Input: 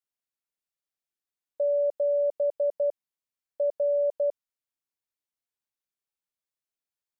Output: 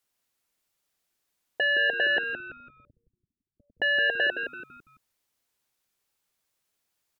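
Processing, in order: 2.18–3.82 inverse Chebyshev low-pass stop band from 520 Hz, stop band 50 dB; sine folder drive 9 dB, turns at -20.5 dBFS; frequency-shifting echo 0.167 s, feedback 35%, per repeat -110 Hz, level -7.5 dB

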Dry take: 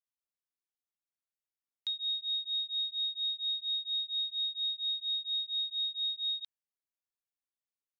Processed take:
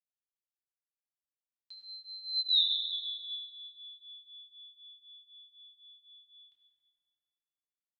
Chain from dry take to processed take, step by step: Doppler pass-by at 2.57, 30 m/s, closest 2 m; reverb RT60 2.5 s, pre-delay 5 ms, DRR -2.5 dB; gain +6.5 dB

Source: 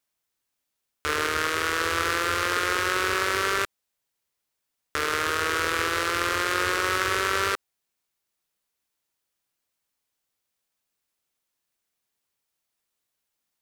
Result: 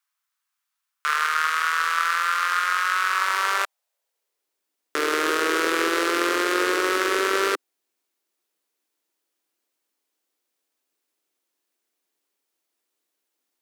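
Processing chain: high-pass sweep 1200 Hz -> 320 Hz, 3.07–4.65; vocal rider

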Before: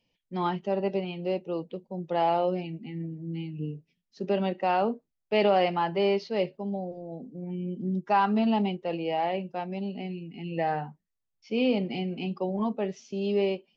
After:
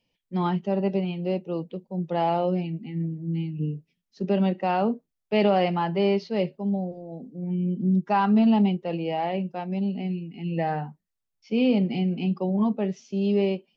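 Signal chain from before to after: dynamic EQ 180 Hz, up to +8 dB, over -43 dBFS, Q 1.2

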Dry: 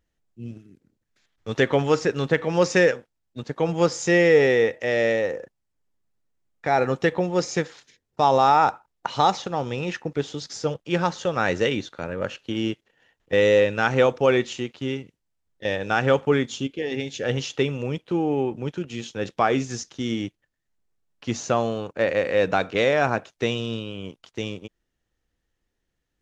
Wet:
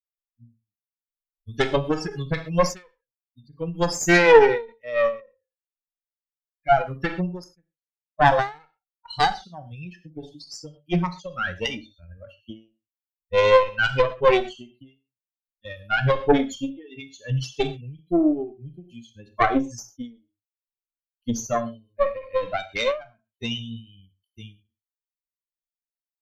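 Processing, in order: per-bin expansion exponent 3; 7.48–8.26 elliptic band-pass 120–2500 Hz, stop band 40 dB; 13.63–14.05 low shelf 200 Hz -10.5 dB; added harmonics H 4 -9 dB, 5 -17 dB, 6 -13 dB, 8 -11 dB, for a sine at -5.5 dBFS; in parallel at -3.5 dB: soft clip -15 dBFS, distortion -12 dB; on the sum: non-linear reverb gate 0.15 s falling, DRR 8 dB; ending taper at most 170 dB/s

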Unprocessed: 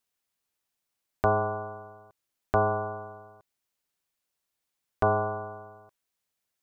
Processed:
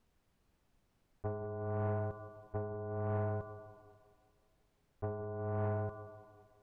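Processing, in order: dynamic EQ 370 Hz, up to +6 dB, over -42 dBFS, Q 1.4; auto swell 0.799 s; negative-ratio compressor -48 dBFS, ratio -1; tilt -4.5 dB/oct; tape echo 0.18 s, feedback 61%, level -15 dB, low-pass 1600 Hz; reverb RT60 1.8 s, pre-delay 28 ms, DRR 10 dB; soft clip -32.5 dBFS, distortion -17 dB; gain +4.5 dB

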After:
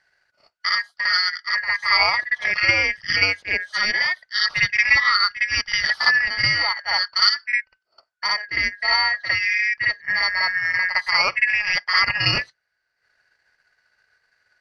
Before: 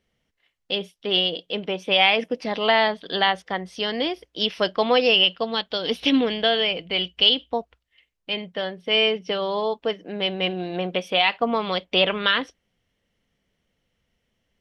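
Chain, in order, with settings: four-band scrambler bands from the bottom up 2143; bell 300 Hz -12 dB 1.6 oct; on a send: reverse echo 57 ms -8.5 dB; on the sum: transient shaper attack +6 dB, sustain -10 dB; air absorption 51 m; in parallel at 0 dB: negative-ratio compressor -29 dBFS, ratio -1; on the sum: gain -1 dB

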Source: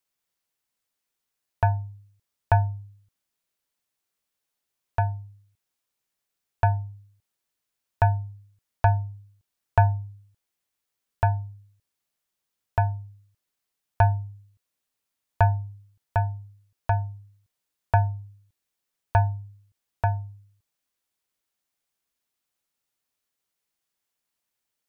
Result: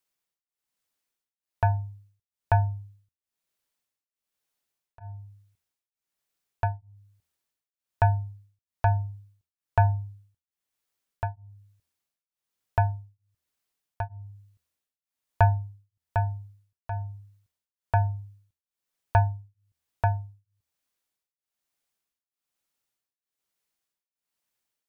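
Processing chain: de-hum 78.69 Hz, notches 3; beating tremolo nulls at 1.1 Hz

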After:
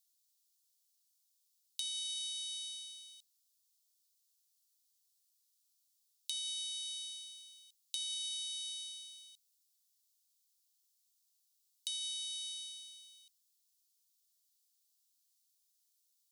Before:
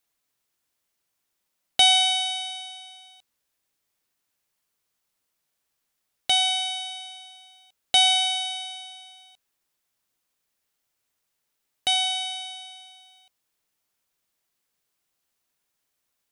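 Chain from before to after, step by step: inverse Chebyshev high-pass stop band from 1200 Hz, stop band 60 dB; limiter -24 dBFS, peak gain reduction 11 dB; compressor 6:1, threshold -40 dBFS, peak gain reduction 10 dB; gain +2 dB

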